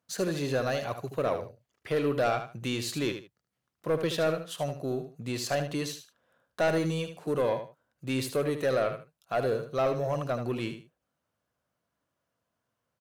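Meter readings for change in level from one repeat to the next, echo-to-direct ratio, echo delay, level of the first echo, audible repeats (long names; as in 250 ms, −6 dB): −13.0 dB, −9.0 dB, 76 ms, −9.0 dB, 2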